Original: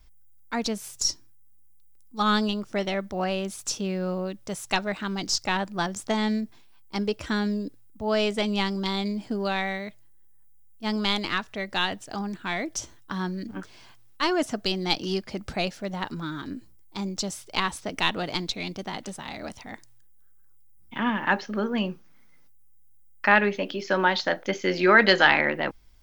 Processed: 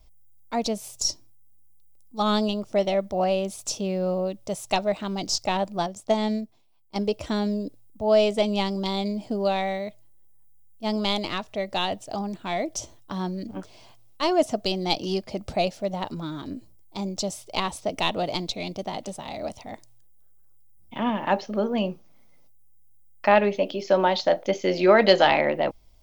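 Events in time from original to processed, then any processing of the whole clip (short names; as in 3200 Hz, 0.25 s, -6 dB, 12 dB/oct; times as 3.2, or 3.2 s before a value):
5.78–6.96 upward expander, over -42 dBFS
whole clip: fifteen-band EQ 100 Hz +3 dB, 630 Hz +9 dB, 1600 Hz -10 dB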